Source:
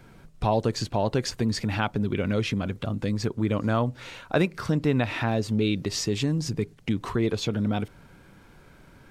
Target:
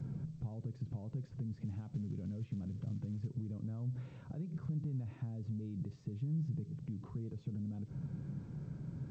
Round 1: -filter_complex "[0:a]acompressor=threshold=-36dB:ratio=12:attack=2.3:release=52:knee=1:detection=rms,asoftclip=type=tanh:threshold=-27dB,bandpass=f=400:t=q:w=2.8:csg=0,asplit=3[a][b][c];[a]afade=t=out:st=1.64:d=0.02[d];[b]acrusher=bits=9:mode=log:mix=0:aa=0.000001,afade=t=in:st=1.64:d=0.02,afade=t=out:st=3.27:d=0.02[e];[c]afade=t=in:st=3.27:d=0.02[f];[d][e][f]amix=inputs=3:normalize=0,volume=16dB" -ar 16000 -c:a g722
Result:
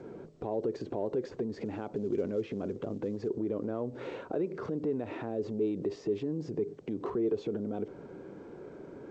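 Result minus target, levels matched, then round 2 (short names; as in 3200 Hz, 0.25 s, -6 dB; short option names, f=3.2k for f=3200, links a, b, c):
500 Hz band +17.0 dB; compressor: peak gain reduction -9 dB
-filter_complex "[0:a]acompressor=threshold=-46dB:ratio=12:attack=2.3:release=52:knee=1:detection=rms,asoftclip=type=tanh:threshold=-27dB,bandpass=f=140:t=q:w=2.8:csg=0,asplit=3[a][b][c];[a]afade=t=out:st=1.64:d=0.02[d];[b]acrusher=bits=9:mode=log:mix=0:aa=0.000001,afade=t=in:st=1.64:d=0.02,afade=t=out:st=3.27:d=0.02[e];[c]afade=t=in:st=3.27:d=0.02[f];[d][e][f]amix=inputs=3:normalize=0,volume=16dB" -ar 16000 -c:a g722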